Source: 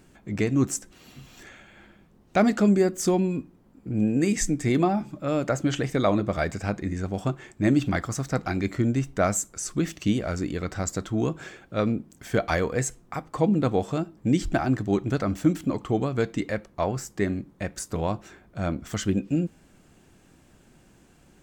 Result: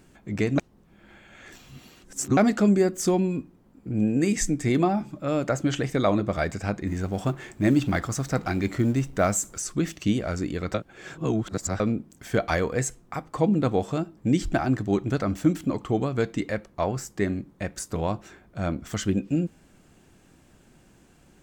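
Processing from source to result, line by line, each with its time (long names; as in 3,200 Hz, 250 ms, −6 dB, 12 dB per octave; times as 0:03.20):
0:00.58–0:02.37: reverse
0:06.87–0:09.62: mu-law and A-law mismatch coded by mu
0:10.74–0:11.80: reverse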